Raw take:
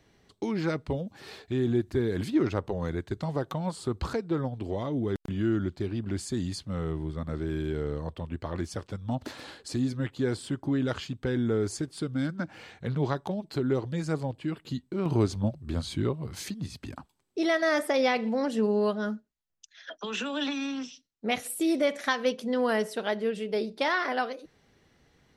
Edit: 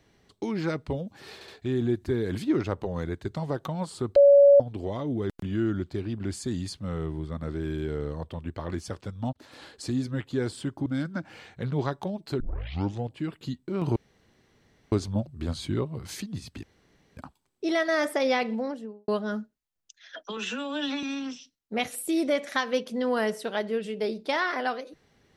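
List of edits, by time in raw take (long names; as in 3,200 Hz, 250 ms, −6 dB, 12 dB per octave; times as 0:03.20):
0:01.34: stutter 0.07 s, 3 plays
0:04.02–0:04.46: beep over 565 Hz −11.5 dBFS
0:09.19–0:09.58: fade in
0:10.72–0:12.10: remove
0:13.64: tape start 0.70 s
0:15.20: splice in room tone 0.96 s
0:16.91: splice in room tone 0.54 s
0:18.15–0:18.82: fade out and dull
0:20.11–0:20.55: time-stretch 1.5×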